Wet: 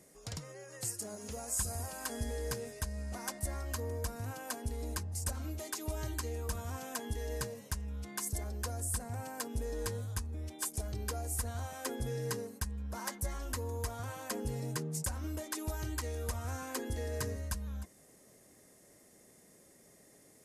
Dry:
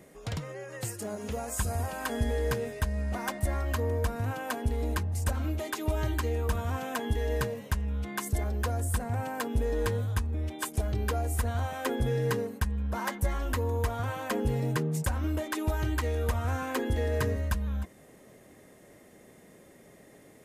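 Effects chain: high-order bell 7.4 kHz +11 dB; trim -9 dB

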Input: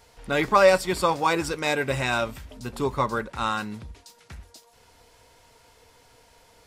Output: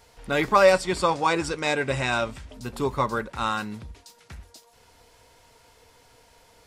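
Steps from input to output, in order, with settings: 0.72–2.54 s: low-pass 9.6 kHz 24 dB/octave

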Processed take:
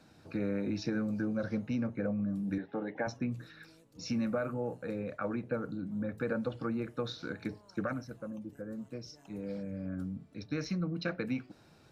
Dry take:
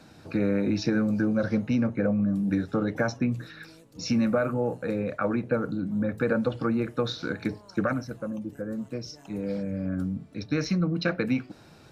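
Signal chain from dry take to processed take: 2.58–3.07 s: cabinet simulation 240–3300 Hz, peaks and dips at 830 Hz +8 dB, 1.3 kHz -9 dB, 1.9 kHz +6 dB; trim -8.5 dB

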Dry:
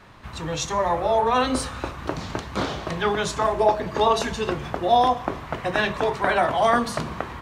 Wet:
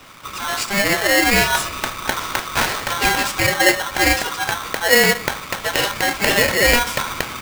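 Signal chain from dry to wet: gain riding within 5 dB 2 s; polarity switched at an audio rate 1.2 kHz; trim +3.5 dB

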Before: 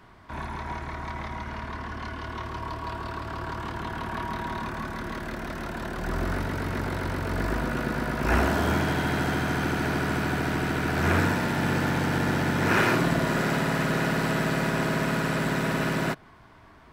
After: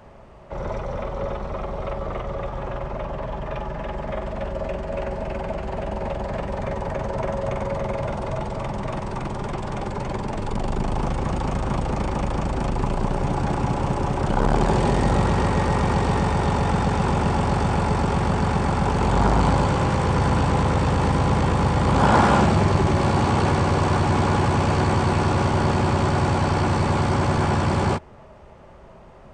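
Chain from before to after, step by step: speed mistake 78 rpm record played at 45 rpm; transformer saturation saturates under 200 Hz; trim +6.5 dB

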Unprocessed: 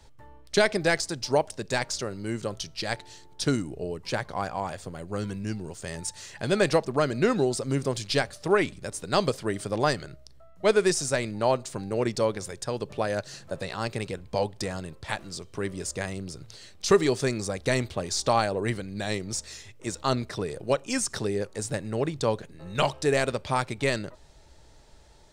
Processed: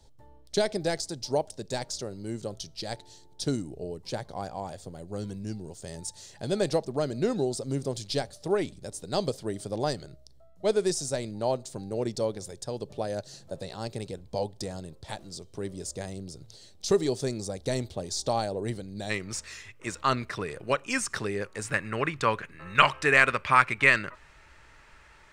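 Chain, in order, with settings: high-order bell 1.7 kHz -8.5 dB, from 19.09 s +8.5 dB, from 21.65 s +15 dB; trim -3.5 dB

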